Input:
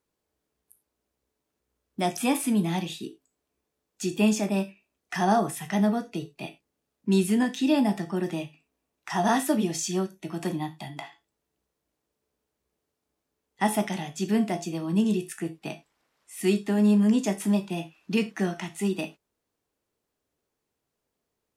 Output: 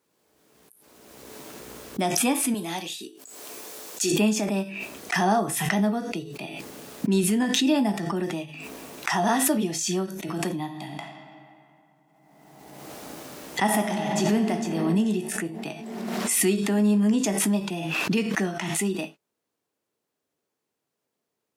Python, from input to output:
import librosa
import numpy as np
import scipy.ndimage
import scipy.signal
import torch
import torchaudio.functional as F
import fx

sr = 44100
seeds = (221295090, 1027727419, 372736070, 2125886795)

y = fx.bass_treble(x, sr, bass_db=-14, treble_db=6, at=(2.54, 4.12))
y = fx.reverb_throw(y, sr, start_s=10.62, length_s=3.91, rt60_s=2.6, drr_db=3.5)
y = scipy.signal.sosfilt(scipy.signal.butter(2, 140.0, 'highpass', fs=sr, output='sos'), y)
y = fx.pre_swell(y, sr, db_per_s=28.0)